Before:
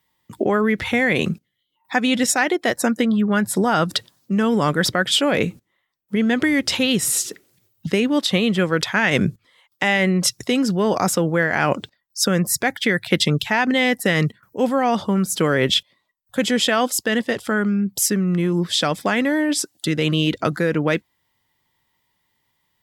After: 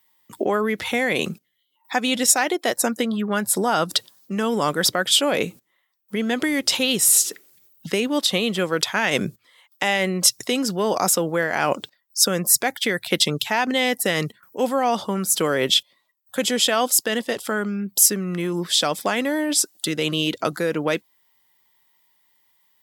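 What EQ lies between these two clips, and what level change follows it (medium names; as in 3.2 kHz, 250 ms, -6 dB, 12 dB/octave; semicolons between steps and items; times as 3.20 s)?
RIAA curve recording; treble shelf 3.4 kHz -10 dB; dynamic bell 1.8 kHz, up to -6 dB, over -36 dBFS, Q 1.4; +1.5 dB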